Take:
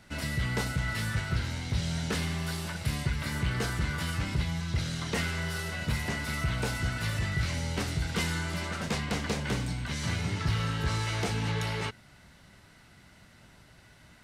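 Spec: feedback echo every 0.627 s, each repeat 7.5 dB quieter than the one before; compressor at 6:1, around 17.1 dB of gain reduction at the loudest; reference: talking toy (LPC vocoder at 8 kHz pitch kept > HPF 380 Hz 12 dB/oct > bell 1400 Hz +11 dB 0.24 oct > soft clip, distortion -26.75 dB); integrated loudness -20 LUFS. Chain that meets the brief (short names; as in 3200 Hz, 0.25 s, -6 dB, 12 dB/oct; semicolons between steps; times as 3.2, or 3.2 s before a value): compressor 6:1, threshold -44 dBFS; feedback echo 0.627 s, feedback 42%, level -7.5 dB; LPC vocoder at 8 kHz pitch kept; HPF 380 Hz 12 dB/oct; bell 1400 Hz +11 dB 0.24 oct; soft clip -31.5 dBFS; gain +28 dB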